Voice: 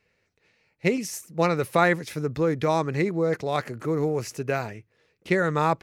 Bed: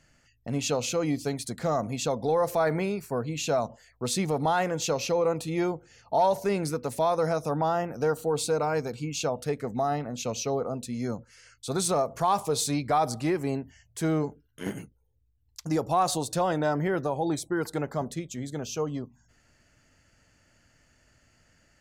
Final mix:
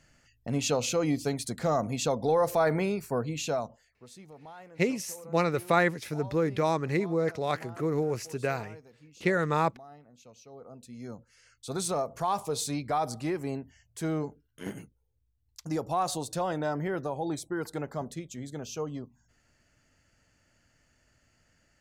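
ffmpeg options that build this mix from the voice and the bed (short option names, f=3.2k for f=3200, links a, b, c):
-filter_complex "[0:a]adelay=3950,volume=-3.5dB[a];[1:a]volume=18dB,afade=t=out:st=3.18:d=0.88:silence=0.0749894,afade=t=in:st=10.49:d=1.28:silence=0.125893[b];[a][b]amix=inputs=2:normalize=0"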